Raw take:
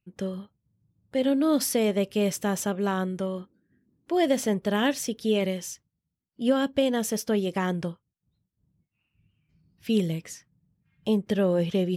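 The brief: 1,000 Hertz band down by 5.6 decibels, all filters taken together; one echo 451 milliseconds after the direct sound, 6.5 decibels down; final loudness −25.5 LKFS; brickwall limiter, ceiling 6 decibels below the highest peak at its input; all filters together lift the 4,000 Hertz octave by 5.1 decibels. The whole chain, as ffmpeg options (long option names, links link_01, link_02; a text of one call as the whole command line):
ffmpeg -i in.wav -af "equalizer=frequency=1000:width_type=o:gain=-8.5,equalizer=frequency=4000:width_type=o:gain=8,alimiter=limit=-17dB:level=0:latency=1,aecho=1:1:451:0.473,volume=2.5dB" out.wav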